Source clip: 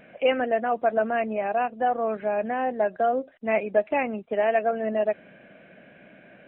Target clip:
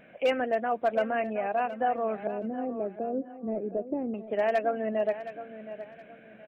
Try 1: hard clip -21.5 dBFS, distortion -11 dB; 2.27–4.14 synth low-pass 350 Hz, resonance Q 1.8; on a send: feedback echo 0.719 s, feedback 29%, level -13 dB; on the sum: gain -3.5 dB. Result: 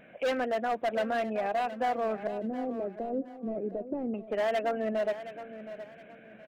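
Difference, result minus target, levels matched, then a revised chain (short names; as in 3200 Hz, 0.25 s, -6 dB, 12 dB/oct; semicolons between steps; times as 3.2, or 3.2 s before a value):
hard clip: distortion +14 dB
hard clip -14.5 dBFS, distortion -25 dB; 2.27–4.14 synth low-pass 350 Hz, resonance Q 1.8; on a send: feedback echo 0.719 s, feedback 29%, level -13 dB; on the sum: gain -3.5 dB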